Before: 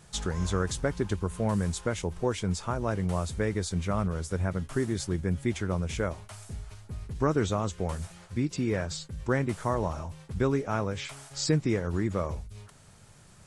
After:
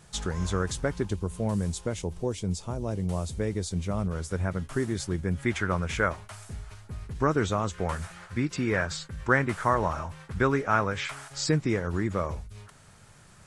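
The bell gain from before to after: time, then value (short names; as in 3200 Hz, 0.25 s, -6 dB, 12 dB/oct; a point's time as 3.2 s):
bell 1500 Hz 1.5 oct
+1 dB
from 1.05 s -7 dB
from 2.22 s -13 dB
from 3.08 s -7 dB
from 4.11 s +2 dB
from 5.39 s +11.5 dB
from 6.16 s +5 dB
from 7.74 s +11 dB
from 11.28 s +4.5 dB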